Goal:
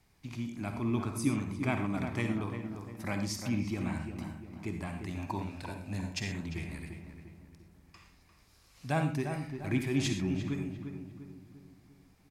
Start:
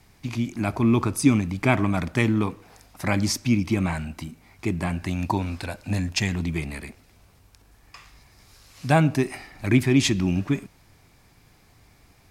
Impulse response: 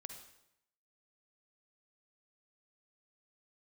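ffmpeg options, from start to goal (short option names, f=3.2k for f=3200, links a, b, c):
-filter_complex "[0:a]asplit=2[a][b];[b]adelay=348,lowpass=f=1.7k:p=1,volume=-7dB,asplit=2[c][d];[d]adelay=348,lowpass=f=1.7k:p=1,volume=0.49,asplit=2[e][f];[f]adelay=348,lowpass=f=1.7k:p=1,volume=0.49,asplit=2[g][h];[h]adelay=348,lowpass=f=1.7k:p=1,volume=0.49,asplit=2[i][j];[j]adelay=348,lowpass=f=1.7k:p=1,volume=0.49,asplit=2[k][l];[l]adelay=348,lowpass=f=1.7k:p=1,volume=0.49[m];[a][c][e][g][i][k][m]amix=inputs=7:normalize=0[n];[1:a]atrim=start_sample=2205,afade=t=out:st=0.18:d=0.01,atrim=end_sample=8379[o];[n][o]afir=irnorm=-1:irlink=0,volume=-6.5dB"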